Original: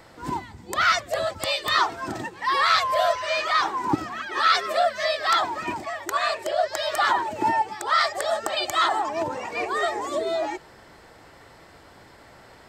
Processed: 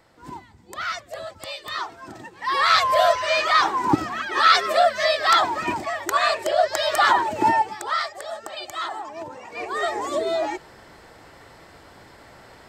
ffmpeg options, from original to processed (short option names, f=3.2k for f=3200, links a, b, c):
-af "volume=14dB,afade=t=in:st=2.22:d=0.64:silence=0.237137,afade=t=out:st=7.48:d=0.62:silence=0.251189,afade=t=in:st=9.45:d=0.57:silence=0.316228"